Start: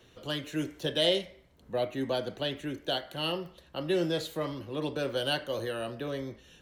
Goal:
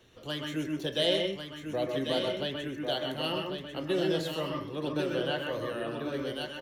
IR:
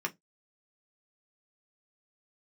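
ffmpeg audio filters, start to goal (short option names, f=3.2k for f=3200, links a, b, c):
-filter_complex "[0:a]aecho=1:1:1095:0.473,asettb=1/sr,asplit=3[a][b][c];[a]atrim=end=5.144[d];[b]atrim=start=5.14:end=6.14,asetpts=PTS-STARTPTS,afade=t=in:d=0.004:c=qsin,afade=t=out:st=0.996:d=0.004:c=qsin,acrossover=split=3100[e][f];[f]acompressor=threshold=-50dB:ratio=4:attack=1:release=60[g];[e][g]amix=inputs=2:normalize=0[h];[c]atrim=start=6.136[i];[d][h]acrossfade=d=0.004:c1=hsin:c2=qsin[j];[j][i]acrossfade=d=0.004:c1=qsin:c2=hsin,asplit=2[k][l];[1:a]atrim=start_sample=2205,adelay=128[m];[l][m]afir=irnorm=-1:irlink=0,volume=-6.5dB[n];[k][n]amix=inputs=2:normalize=0,volume=-2dB"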